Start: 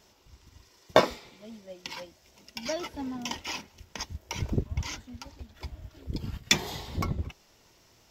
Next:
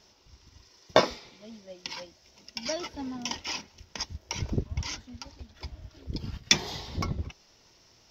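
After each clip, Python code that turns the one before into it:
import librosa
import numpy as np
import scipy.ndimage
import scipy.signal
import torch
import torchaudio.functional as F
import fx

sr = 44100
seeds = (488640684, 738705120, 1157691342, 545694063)

y = fx.high_shelf_res(x, sr, hz=6900.0, db=-7.5, q=3.0)
y = y * 10.0 ** (-1.0 / 20.0)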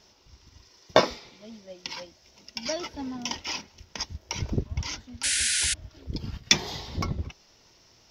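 y = fx.spec_paint(x, sr, seeds[0], shape='noise', start_s=5.23, length_s=0.51, low_hz=1400.0, high_hz=11000.0, level_db=-27.0)
y = y * 10.0 ** (1.5 / 20.0)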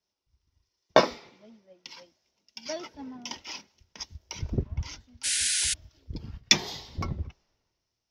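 y = fx.band_widen(x, sr, depth_pct=70)
y = y * 10.0 ** (-6.0 / 20.0)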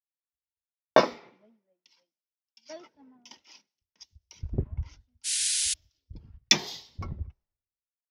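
y = fx.band_widen(x, sr, depth_pct=100)
y = y * 10.0 ** (-9.0 / 20.0)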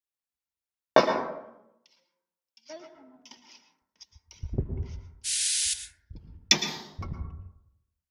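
y = fx.rev_plate(x, sr, seeds[1], rt60_s=0.81, hf_ratio=0.25, predelay_ms=100, drr_db=6.5)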